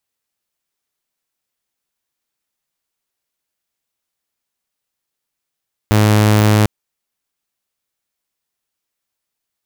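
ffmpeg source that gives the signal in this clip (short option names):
-f lavfi -i "aevalsrc='0.473*(2*mod(106*t,1)-1)':d=0.75:s=44100"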